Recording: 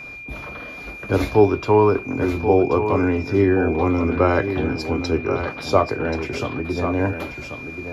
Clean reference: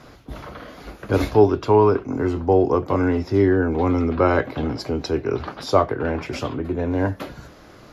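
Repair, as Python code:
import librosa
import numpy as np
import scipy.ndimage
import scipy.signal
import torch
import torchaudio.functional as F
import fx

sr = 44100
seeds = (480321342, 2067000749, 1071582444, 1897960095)

y = fx.notch(x, sr, hz=2400.0, q=30.0)
y = fx.fix_echo_inverse(y, sr, delay_ms=1082, level_db=-8.5)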